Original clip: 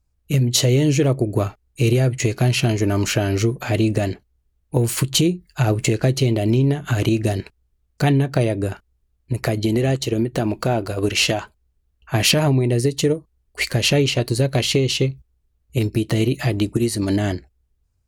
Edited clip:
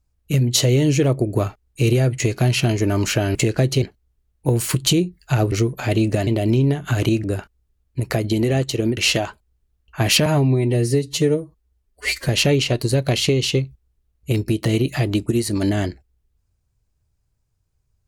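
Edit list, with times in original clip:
3.35–4.10 s: swap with 5.80–6.27 s
7.24–8.57 s: delete
10.30–11.11 s: delete
12.40–13.75 s: stretch 1.5×

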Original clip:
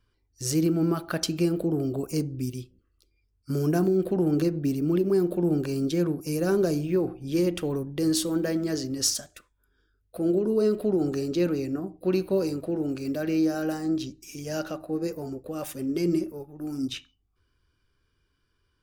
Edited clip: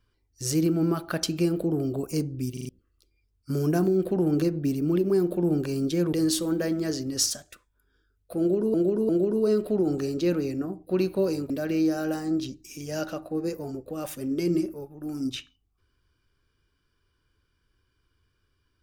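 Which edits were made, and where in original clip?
2.53 s: stutter in place 0.04 s, 4 plays
6.13–7.97 s: delete
10.23–10.58 s: loop, 3 plays
12.64–13.08 s: delete

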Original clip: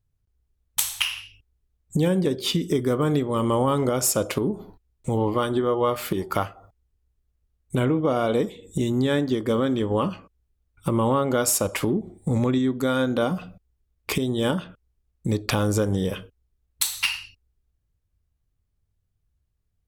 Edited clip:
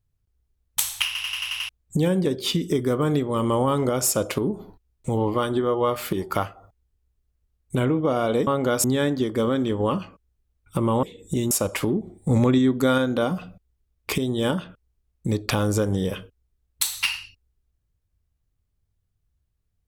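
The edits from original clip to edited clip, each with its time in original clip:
1.06 s: stutter in place 0.09 s, 7 plays
8.47–8.95 s: swap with 11.14–11.51 s
12.29–12.98 s: gain +3.5 dB

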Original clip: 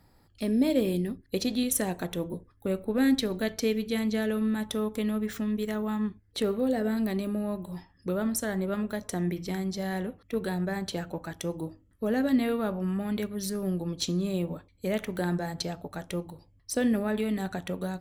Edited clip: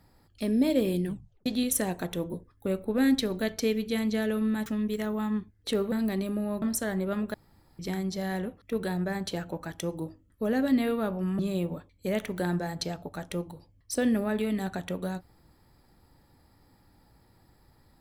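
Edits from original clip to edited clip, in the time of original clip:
1.05 s: tape stop 0.41 s
4.66–5.35 s: delete
6.61–6.90 s: delete
7.60–8.23 s: delete
8.95–9.40 s: room tone
13.00–14.18 s: delete

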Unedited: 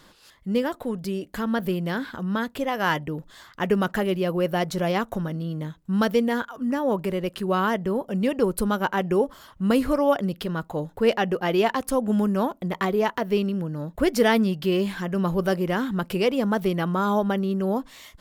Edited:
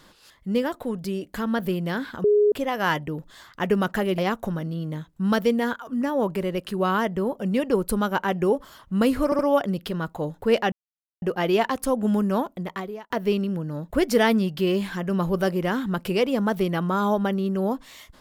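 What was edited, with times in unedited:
2.24–2.52 s: bleep 416 Hz -14.5 dBFS
4.18–4.87 s: delete
9.94 s: stutter 0.07 s, 3 plays
11.27 s: insert silence 0.50 s
12.46–13.15 s: fade out

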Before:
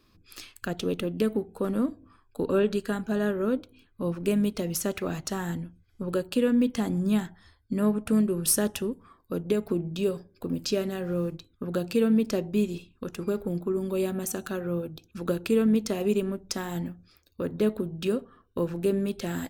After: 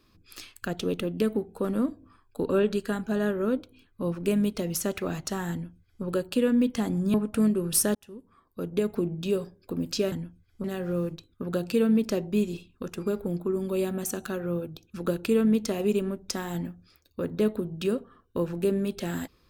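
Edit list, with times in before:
5.52–6.04 s: copy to 10.85 s
7.14–7.87 s: delete
8.68–9.58 s: fade in

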